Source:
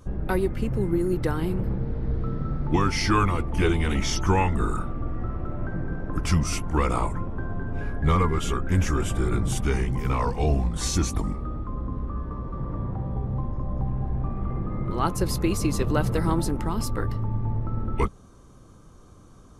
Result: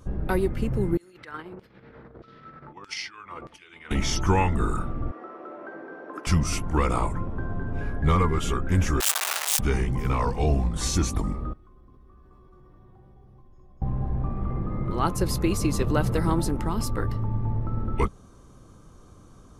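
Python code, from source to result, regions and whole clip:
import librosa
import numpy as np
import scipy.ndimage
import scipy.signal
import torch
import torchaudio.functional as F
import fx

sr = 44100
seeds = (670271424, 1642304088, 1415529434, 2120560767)

y = fx.chain(x, sr, fx.peak_eq(hz=820.0, db=-4.5, octaves=0.92),
    fx.over_compress(threshold_db=-27.0, ratio=-0.5),
    fx.filter_lfo_bandpass(shape='saw_down', hz=1.6, low_hz=710.0, high_hz=5000.0, q=1.1), at=(0.97, 3.91))
y = fx.chain(y, sr, fx.highpass(hz=350.0, slope=24),
    fx.high_shelf(hz=4800.0, db=-7.5), at=(5.11, 6.27))
y = fx.chain(y, sr, fx.clip_1bit(),
    fx.highpass(hz=740.0, slope=24),
    fx.high_shelf(hz=3300.0, db=8.0), at=(9.0, 9.59))
y = fx.chain(y, sr, fx.pre_emphasis(coefficient=0.8),
    fx.comb_fb(f0_hz=370.0, decay_s=0.18, harmonics='all', damping=0.0, mix_pct=90),
    fx.env_flatten(amount_pct=70), at=(11.53, 13.82))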